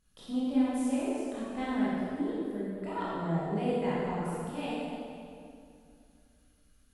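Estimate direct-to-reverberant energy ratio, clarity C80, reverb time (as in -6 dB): -9.0 dB, -2.0 dB, 2.5 s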